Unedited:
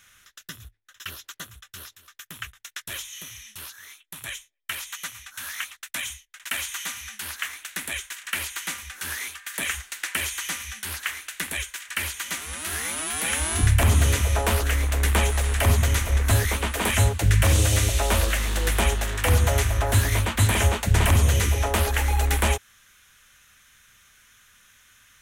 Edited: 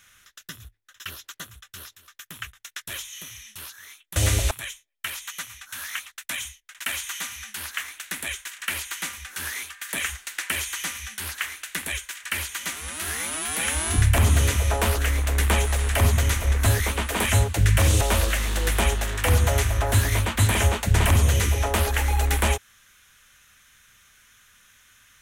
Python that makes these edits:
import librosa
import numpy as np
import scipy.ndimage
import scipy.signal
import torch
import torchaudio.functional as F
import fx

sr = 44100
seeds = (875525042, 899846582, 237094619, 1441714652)

y = fx.edit(x, sr, fx.move(start_s=17.66, length_s=0.35, to_s=4.16), tone=tone)